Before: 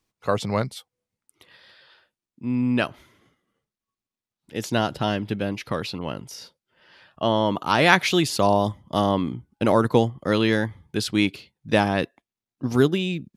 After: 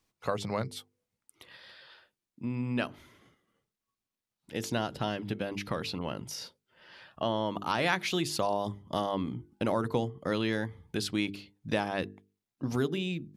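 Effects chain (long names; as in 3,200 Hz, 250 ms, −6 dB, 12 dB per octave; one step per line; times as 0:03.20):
mains-hum notches 50/100/150/200/250/300/350/400/450 Hz
downward compressor 2 to 1, threshold −34 dBFS, peak gain reduction 13 dB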